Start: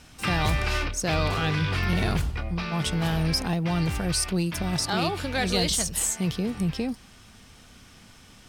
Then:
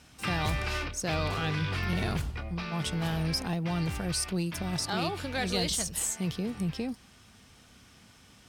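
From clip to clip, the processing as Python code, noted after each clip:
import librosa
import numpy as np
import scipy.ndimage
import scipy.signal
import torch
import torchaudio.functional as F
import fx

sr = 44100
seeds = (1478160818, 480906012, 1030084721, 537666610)

y = scipy.signal.sosfilt(scipy.signal.butter(2, 49.0, 'highpass', fs=sr, output='sos'), x)
y = y * librosa.db_to_amplitude(-5.0)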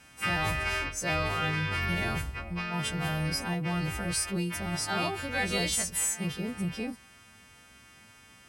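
y = fx.freq_snap(x, sr, grid_st=2)
y = fx.high_shelf_res(y, sr, hz=3100.0, db=-7.5, q=1.5)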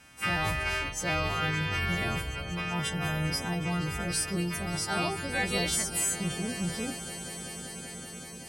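y = fx.echo_swell(x, sr, ms=191, loudest=5, wet_db=-16.0)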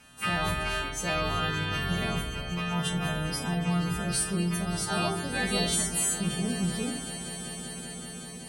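y = fx.room_shoebox(x, sr, seeds[0], volume_m3=1000.0, walls='furnished', distance_m=1.4)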